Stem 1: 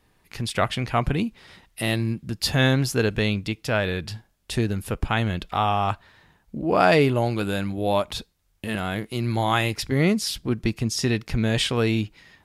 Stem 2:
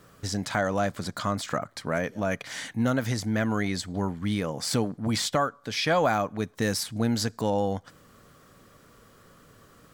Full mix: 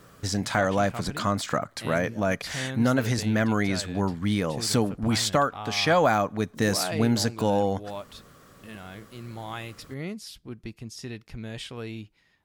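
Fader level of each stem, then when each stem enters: −14.5, +2.5 decibels; 0.00, 0.00 seconds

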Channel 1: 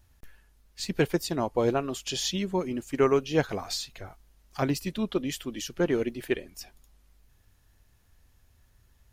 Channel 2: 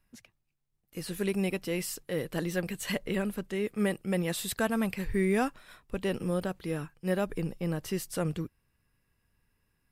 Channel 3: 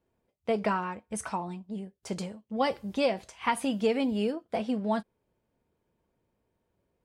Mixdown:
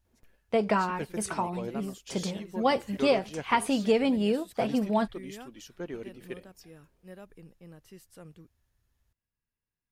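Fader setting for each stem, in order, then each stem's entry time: −12.5, −18.0, +2.5 decibels; 0.00, 0.00, 0.05 seconds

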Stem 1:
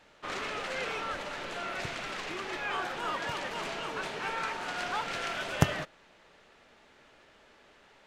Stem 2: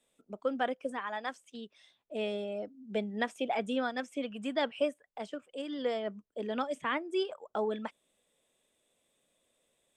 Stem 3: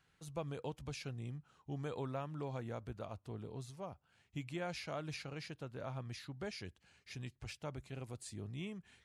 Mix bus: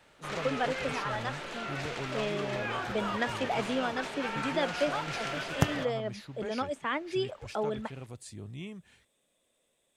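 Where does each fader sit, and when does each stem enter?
−1.5, +0.5, +2.5 decibels; 0.00, 0.00, 0.00 seconds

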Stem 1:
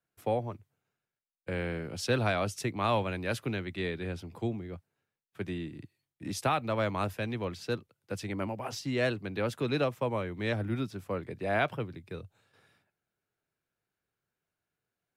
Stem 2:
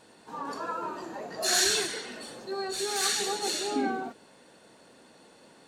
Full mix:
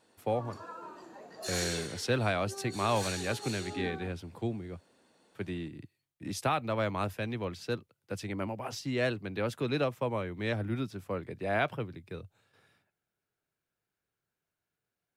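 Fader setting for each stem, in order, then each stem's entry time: −1.0, −11.0 decibels; 0.00, 0.00 seconds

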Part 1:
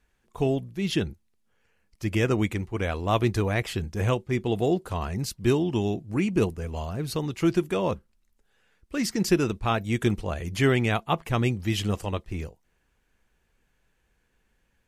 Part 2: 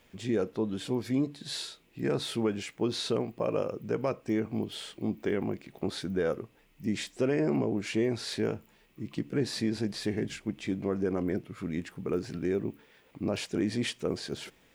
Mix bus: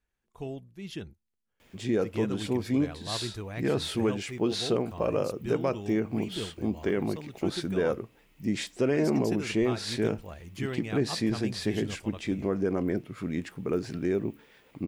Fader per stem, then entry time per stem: −13.0, +2.0 decibels; 0.00, 1.60 seconds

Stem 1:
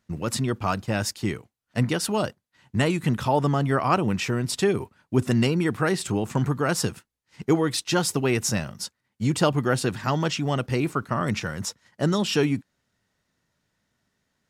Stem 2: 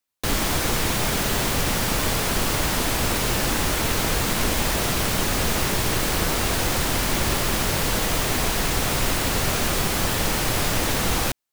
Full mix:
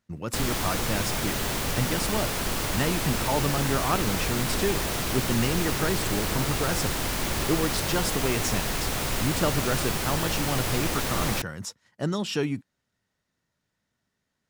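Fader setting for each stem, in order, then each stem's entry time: −5.0, −5.5 decibels; 0.00, 0.10 seconds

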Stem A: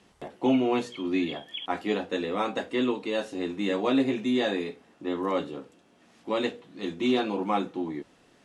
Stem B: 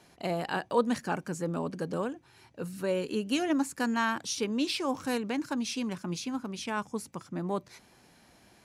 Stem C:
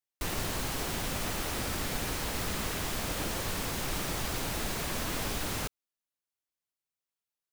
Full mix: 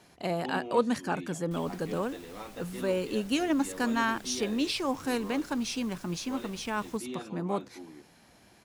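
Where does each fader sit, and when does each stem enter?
−15.0, +0.5, −18.5 decibels; 0.00, 0.00, 1.30 seconds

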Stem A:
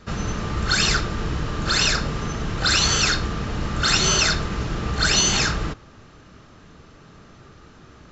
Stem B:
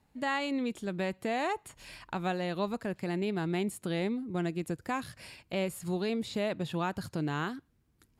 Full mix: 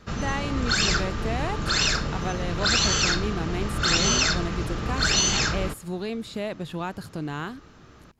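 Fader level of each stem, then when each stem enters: −3.0, +1.0 decibels; 0.00, 0.00 seconds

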